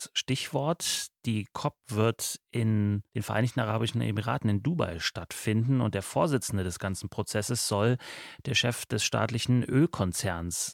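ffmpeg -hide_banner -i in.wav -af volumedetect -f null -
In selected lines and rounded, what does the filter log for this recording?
mean_volume: -28.9 dB
max_volume: -12.0 dB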